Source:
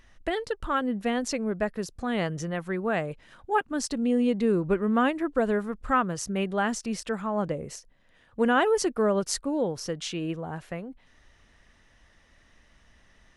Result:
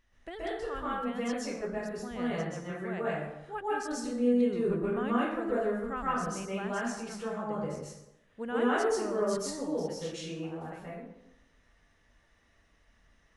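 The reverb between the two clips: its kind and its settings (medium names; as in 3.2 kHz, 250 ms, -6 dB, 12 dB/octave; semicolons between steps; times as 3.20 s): plate-style reverb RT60 0.88 s, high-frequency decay 0.6×, pre-delay 115 ms, DRR -8 dB; trim -14.5 dB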